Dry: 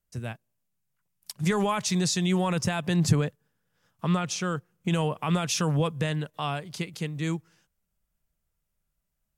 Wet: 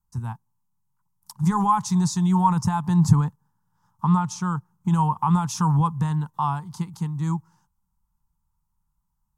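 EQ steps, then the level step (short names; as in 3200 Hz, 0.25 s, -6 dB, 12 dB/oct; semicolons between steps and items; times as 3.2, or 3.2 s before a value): EQ curve 180 Hz 0 dB, 610 Hz -24 dB, 900 Hz +10 dB, 1600 Hz -12 dB, 2400 Hz -22 dB, 6300 Hz -8 dB; +6.0 dB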